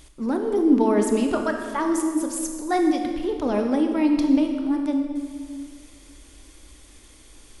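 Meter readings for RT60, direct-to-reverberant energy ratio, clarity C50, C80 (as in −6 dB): 2.0 s, 3.5 dB, 5.0 dB, 6.0 dB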